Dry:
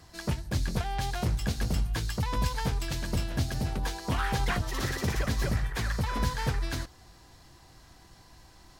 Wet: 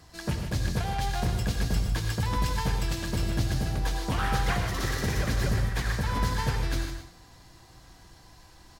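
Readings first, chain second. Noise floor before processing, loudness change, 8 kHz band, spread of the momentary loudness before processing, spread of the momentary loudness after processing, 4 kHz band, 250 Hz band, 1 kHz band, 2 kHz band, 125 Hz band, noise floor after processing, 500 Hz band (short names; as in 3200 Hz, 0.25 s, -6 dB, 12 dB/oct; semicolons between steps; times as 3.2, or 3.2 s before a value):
-56 dBFS, +2.0 dB, +1.5 dB, 4 LU, 3 LU, +1.5 dB, +1.5 dB, +2.0 dB, +2.0 dB, +2.5 dB, -53 dBFS, +1.5 dB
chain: echo 0.154 s -8.5 dB; non-linear reverb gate 0.14 s rising, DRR 5.5 dB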